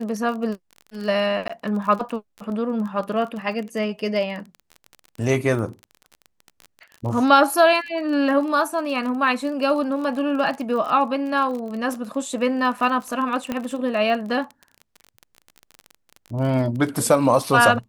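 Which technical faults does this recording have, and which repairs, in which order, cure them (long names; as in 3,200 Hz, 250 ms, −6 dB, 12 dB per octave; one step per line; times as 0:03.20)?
surface crackle 30 per second −29 dBFS
0:01.48–0:01.50: drop-out 15 ms
0:13.52: click −12 dBFS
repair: click removal
repair the gap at 0:01.48, 15 ms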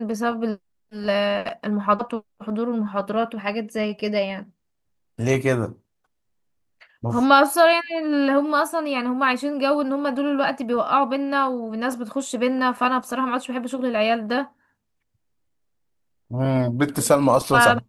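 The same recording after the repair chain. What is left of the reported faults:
none of them is left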